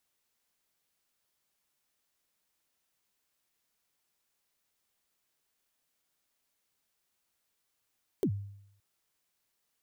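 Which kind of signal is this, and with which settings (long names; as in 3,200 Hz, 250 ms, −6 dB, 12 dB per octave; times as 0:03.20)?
synth kick length 0.57 s, from 450 Hz, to 100 Hz, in 75 ms, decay 0.75 s, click on, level −23 dB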